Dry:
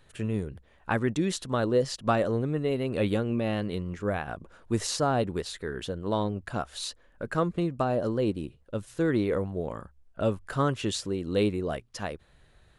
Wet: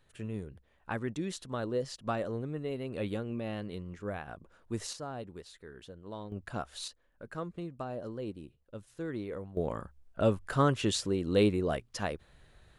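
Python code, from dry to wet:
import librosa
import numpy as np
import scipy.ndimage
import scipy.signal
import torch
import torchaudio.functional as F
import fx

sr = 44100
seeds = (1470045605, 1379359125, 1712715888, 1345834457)

y = fx.gain(x, sr, db=fx.steps((0.0, -8.5), (4.93, -15.0), (6.32, -5.5), (6.88, -12.0), (9.57, 0.0)))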